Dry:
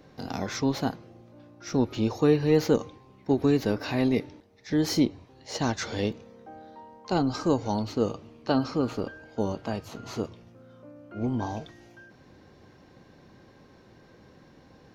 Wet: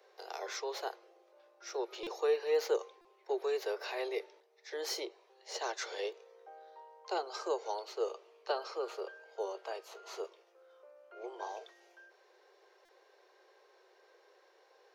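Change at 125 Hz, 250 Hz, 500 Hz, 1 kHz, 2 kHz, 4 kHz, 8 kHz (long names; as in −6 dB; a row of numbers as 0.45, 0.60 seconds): below −40 dB, −25.5 dB, −7.0 dB, −6.5 dB, −6.5 dB, −6.5 dB, −6.5 dB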